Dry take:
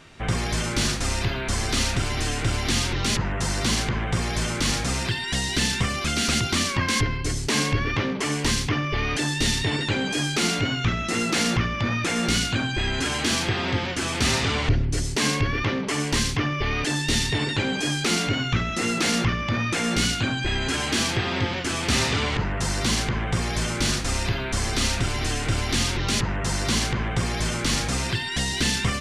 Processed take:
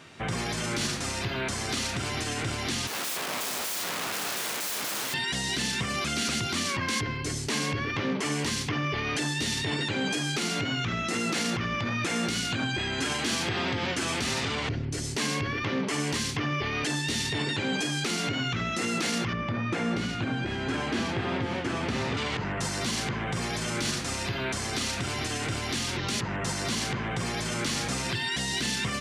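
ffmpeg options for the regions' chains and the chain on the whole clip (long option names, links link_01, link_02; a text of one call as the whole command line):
ffmpeg -i in.wav -filter_complex "[0:a]asettb=1/sr,asplit=3[link_01][link_02][link_03];[link_01]atrim=end=2.874[link_04];[link_02]atrim=start=2.87:end=5.14,asetpts=PTS-STARTPTS,afade=type=in:duration=0.004:curve=qsin,afade=type=out:start_time=2.266:duration=0.004:curve=qsin,highshelf=frequency=2300:gain=-6.5,aeval=exprs='(mod(22.4*val(0)+1,2)-1)/22.4':channel_layout=same,highpass=frequency=190:poles=1[link_05];[link_03]atrim=start=5.136[link_06];[link_04][link_05]acrossfade=duration=0.004:curve1=hsin:curve2=qsin[link_07];[link_07][link_06]acrossfade=duration=0.004:curve1=qsin:curve2=hsin,asettb=1/sr,asplit=3[link_08][link_09][link_10];[link_08]atrim=end=19.334[link_11];[link_09]atrim=start=19.33:end=22.17,asetpts=PTS-STARTPTS,afade=type=in:duration=0.004:curve=qsin,afade=type=out:start_time=2.836:duration=0.004:curve=qsin,lowpass=frequency=1300:poles=1,aecho=1:1:491:0.251,atrim=end_sample=125244[link_12];[link_10]atrim=start=22.166[link_13];[link_11][link_12]acrossfade=duration=0.004:curve1=hsin:curve2=qsin[link_14];[link_14][link_13]acrossfade=duration=0.004:curve1=qsin:curve2=hsin,alimiter=limit=-19.5dB:level=0:latency=1:release=94,highpass=110" out.wav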